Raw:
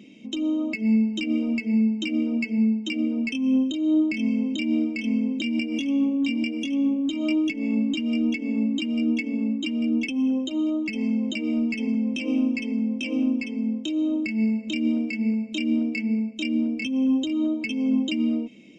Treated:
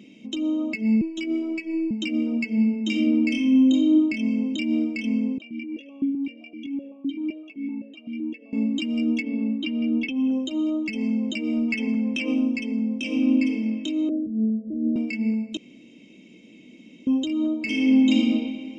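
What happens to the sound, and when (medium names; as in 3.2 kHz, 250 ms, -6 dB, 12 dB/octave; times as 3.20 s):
1.01–1.91 s: robot voice 324 Hz
2.47–3.90 s: reverb throw, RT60 1 s, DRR 1.5 dB
5.38–8.53 s: stepped vowel filter 7.8 Hz
9.22–10.31 s: low-pass 4.4 kHz 24 dB/octave
11.68–12.34 s: peaking EQ 1.6 kHz +8 dB 1.5 oct
12.97–13.49 s: reverb throw, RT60 2.3 s, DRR 3.5 dB
14.09–14.96 s: Chebyshev low-pass 630 Hz, order 6
15.57–17.07 s: room tone
17.61–18.12 s: reverb throw, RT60 2.3 s, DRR -4 dB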